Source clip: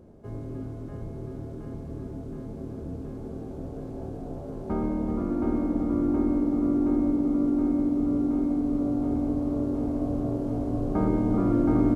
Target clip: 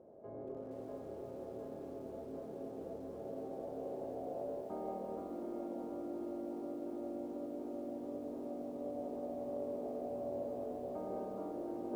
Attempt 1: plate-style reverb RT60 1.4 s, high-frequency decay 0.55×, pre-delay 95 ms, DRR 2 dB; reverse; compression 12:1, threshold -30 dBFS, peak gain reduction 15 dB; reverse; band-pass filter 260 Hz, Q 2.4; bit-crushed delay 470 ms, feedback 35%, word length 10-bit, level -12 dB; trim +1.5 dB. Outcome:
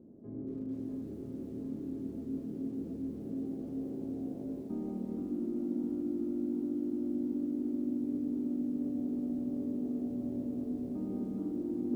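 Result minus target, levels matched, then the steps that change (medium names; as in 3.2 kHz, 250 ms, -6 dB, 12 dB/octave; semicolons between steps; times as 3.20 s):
500 Hz band -10.0 dB
change: band-pass filter 610 Hz, Q 2.4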